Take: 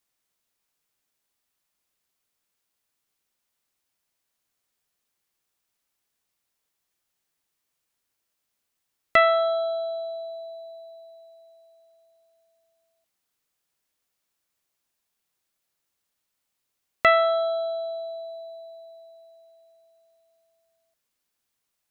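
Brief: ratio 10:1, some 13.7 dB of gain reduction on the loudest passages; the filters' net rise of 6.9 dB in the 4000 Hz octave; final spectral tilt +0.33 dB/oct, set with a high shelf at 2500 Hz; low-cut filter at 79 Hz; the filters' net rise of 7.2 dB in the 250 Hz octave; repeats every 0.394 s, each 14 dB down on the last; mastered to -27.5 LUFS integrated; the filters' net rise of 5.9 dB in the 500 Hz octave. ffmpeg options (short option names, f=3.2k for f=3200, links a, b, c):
-af "highpass=79,equalizer=f=250:t=o:g=6.5,equalizer=f=500:t=o:g=8,highshelf=f=2.5k:g=5.5,equalizer=f=4k:t=o:g=3.5,acompressor=threshold=-22dB:ratio=10,aecho=1:1:394|788:0.2|0.0399,volume=1.5dB"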